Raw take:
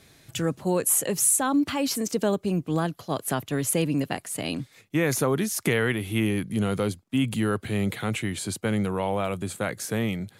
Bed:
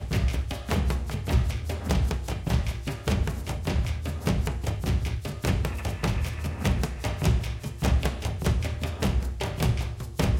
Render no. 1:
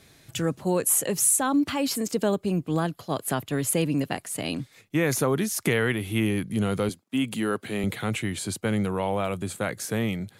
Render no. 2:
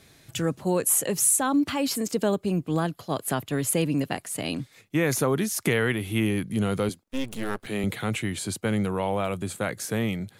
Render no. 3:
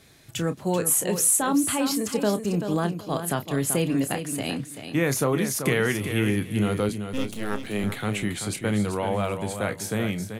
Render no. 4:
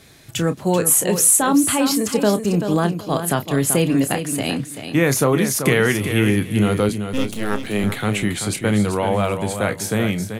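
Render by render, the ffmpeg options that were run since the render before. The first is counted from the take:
-filter_complex "[0:a]asettb=1/sr,asplit=3[s0][s1][s2];[s0]atrim=end=1.834[s3];[s1]atrim=start=1.83:end=3.82,asetpts=PTS-STARTPTS,afade=t=in:d=0.004:c=qsin,afade=t=out:st=1.986:d=0.004:c=qsin,bandreject=f=5900:w=12[s4];[s2]atrim=start=3.816[s5];[s3][s4]acrossfade=d=0.004:c1=hsin:c2=qsin[s6];[s6][s5]acrossfade=d=0.004:c1=qsin:c2=hsin,asettb=1/sr,asplit=3[s7][s8][s9];[s7]atrim=end=6.894[s10];[s8]atrim=start=6.89:end=7.84,asetpts=PTS-STARTPTS,afade=t=in:d=0.004:c=qsin,afade=t=out:st=0.946:d=0.004:c=qsin,highpass=200[s11];[s9]atrim=start=7.836[s12];[s10][s11]acrossfade=d=0.004:c1=hsin:c2=qsin[s13];[s13][s12]acrossfade=d=0.004:c1=qsin:c2=hsin"
-filter_complex "[0:a]asettb=1/sr,asplit=3[s0][s1][s2];[s0]atrim=end=7.034[s3];[s1]atrim=start=7.03:end=7.67,asetpts=PTS-STARTPTS,afade=t=in:d=0.004:c=qsin,afade=t=out:st=0.636:d=0.004:c=qsin,aeval=exprs='max(val(0),0)':c=same[s4];[s2]atrim=start=7.666[s5];[s3][s4]acrossfade=d=0.004:c1=hsin:c2=qsin[s6];[s6][s5]acrossfade=d=0.004:c1=qsin:c2=hsin"
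-filter_complex "[0:a]asplit=2[s0][s1];[s1]adelay=29,volume=0.282[s2];[s0][s2]amix=inputs=2:normalize=0,aecho=1:1:385|770|1155:0.376|0.0752|0.015"
-af "volume=2.11"

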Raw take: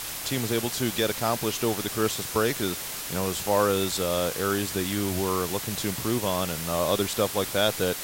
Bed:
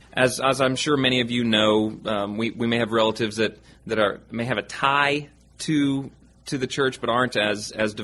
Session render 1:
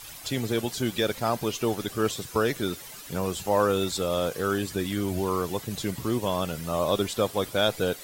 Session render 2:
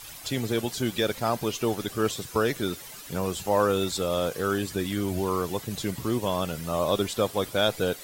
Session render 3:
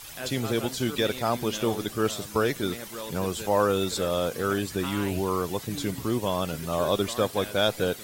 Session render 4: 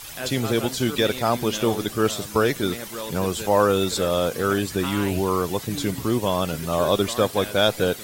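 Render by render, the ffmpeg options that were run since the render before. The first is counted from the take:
-af "afftdn=nr=12:nf=-35"
-af anull
-filter_complex "[1:a]volume=0.126[s0];[0:a][s0]amix=inputs=2:normalize=0"
-af "volume=1.68"

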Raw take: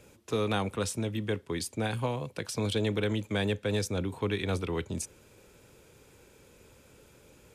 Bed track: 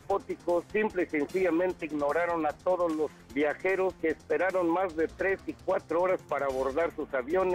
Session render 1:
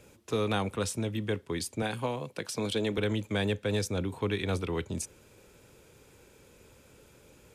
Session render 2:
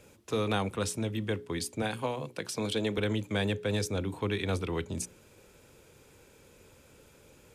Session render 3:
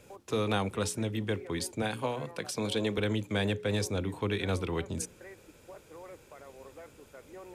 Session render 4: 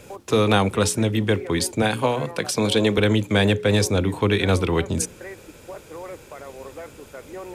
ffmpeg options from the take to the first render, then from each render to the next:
-filter_complex "[0:a]asettb=1/sr,asplit=3[s0][s1][s2];[s0]atrim=end=1.824[s3];[s1]atrim=start=1.82:end=2.98,asetpts=PTS-STARTPTS,afade=t=in:d=0.004:c=qsin,afade=t=out:st=1.156:d=0.004:c=qsin,highpass=150[s4];[s2]atrim=start=2.976[s5];[s3][s4]acrossfade=d=0.004:c1=hsin:c2=qsin[s6];[s6][s5]acrossfade=d=0.004:c1=qsin:c2=hsin"
-af "bandreject=f=60:t=h:w=6,bandreject=f=120:t=h:w=6,bandreject=f=180:t=h:w=6,bandreject=f=240:t=h:w=6,bandreject=f=300:t=h:w=6,bandreject=f=360:t=h:w=6,bandreject=f=420:t=h:w=6"
-filter_complex "[1:a]volume=0.0891[s0];[0:a][s0]amix=inputs=2:normalize=0"
-af "volume=3.76"

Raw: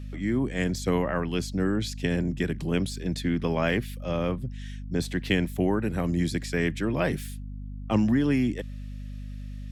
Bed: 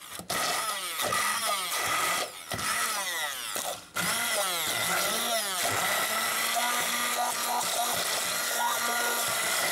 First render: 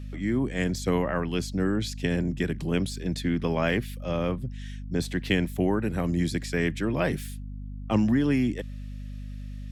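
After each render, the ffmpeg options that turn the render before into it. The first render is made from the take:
-af anull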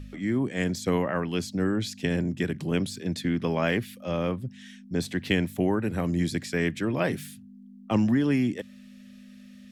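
-af "bandreject=f=50:t=h:w=4,bandreject=f=100:t=h:w=4,bandreject=f=150:t=h:w=4"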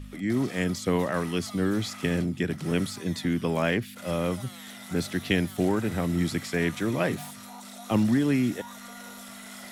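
-filter_complex "[1:a]volume=0.15[s0];[0:a][s0]amix=inputs=2:normalize=0"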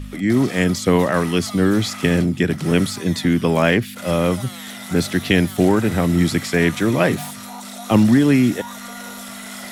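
-af "volume=2.99,alimiter=limit=0.708:level=0:latency=1"

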